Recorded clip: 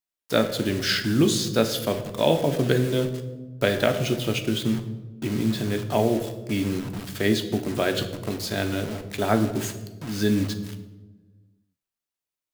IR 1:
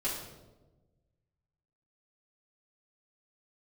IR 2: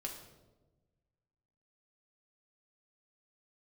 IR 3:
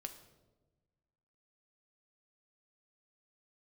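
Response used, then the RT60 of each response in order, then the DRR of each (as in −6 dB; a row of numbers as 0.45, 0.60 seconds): 3; 1.2, 1.2, 1.2 seconds; −10.0, −0.5, 5.5 decibels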